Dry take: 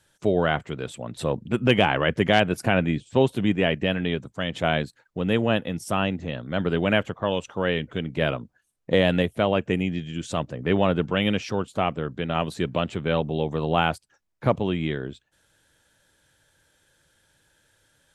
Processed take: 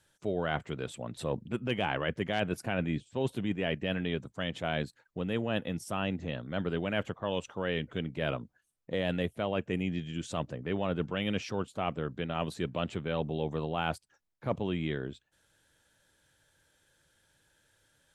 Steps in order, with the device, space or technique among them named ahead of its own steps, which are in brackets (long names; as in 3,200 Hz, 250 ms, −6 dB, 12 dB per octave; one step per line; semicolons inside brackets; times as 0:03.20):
compression on the reversed sound (reversed playback; downward compressor 5 to 1, threshold −22 dBFS, peak gain reduction 9.5 dB; reversed playback)
level −5 dB